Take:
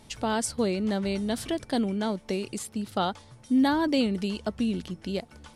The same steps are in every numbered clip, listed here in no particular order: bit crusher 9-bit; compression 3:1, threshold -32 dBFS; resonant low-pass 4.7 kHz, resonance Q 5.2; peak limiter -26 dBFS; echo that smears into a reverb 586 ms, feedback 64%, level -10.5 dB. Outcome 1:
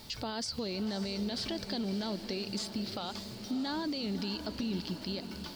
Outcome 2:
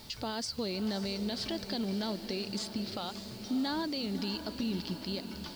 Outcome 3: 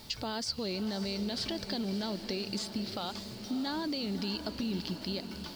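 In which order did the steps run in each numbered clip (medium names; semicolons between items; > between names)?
resonant low-pass > bit crusher > peak limiter > compression > echo that smears into a reverb; resonant low-pass > compression > peak limiter > echo that smears into a reverb > bit crusher; peak limiter > resonant low-pass > bit crusher > compression > echo that smears into a reverb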